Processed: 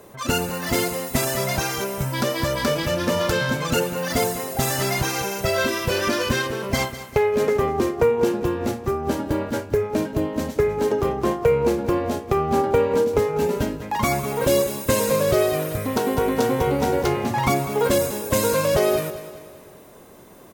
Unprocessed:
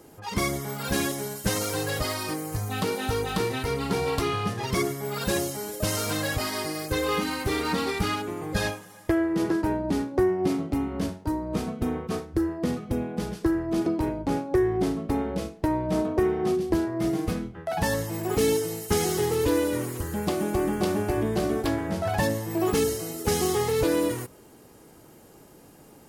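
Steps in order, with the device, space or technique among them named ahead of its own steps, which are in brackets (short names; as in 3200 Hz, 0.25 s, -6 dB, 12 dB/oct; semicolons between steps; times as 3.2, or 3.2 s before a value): feedback echo 0.251 s, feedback 48%, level -13.5 dB; nightcore (varispeed +27%); gain +4.5 dB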